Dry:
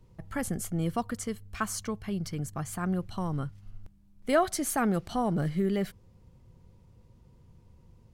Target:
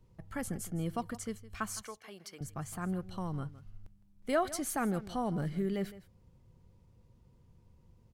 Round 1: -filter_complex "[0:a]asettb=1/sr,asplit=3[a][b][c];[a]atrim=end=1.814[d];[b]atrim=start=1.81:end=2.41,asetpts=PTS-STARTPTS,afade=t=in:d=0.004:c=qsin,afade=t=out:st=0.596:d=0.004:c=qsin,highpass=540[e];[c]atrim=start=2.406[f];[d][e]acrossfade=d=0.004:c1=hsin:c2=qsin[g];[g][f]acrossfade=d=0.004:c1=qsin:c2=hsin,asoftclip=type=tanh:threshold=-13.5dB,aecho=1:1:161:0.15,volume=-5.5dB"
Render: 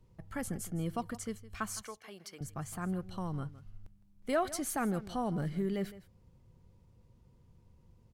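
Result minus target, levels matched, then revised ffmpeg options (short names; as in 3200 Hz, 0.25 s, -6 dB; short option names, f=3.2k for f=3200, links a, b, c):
soft clip: distortion +18 dB
-filter_complex "[0:a]asettb=1/sr,asplit=3[a][b][c];[a]atrim=end=1.814[d];[b]atrim=start=1.81:end=2.41,asetpts=PTS-STARTPTS,afade=t=in:d=0.004:c=qsin,afade=t=out:st=0.596:d=0.004:c=qsin,highpass=540[e];[c]atrim=start=2.406[f];[d][e]acrossfade=d=0.004:c1=hsin:c2=qsin[g];[g][f]acrossfade=d=0.004:c1=qsin:c2=hsin,asoftclip=type=tanh:threshold=-3.5dB,aecho=1:1:161:0.15,volume=-5.5dB"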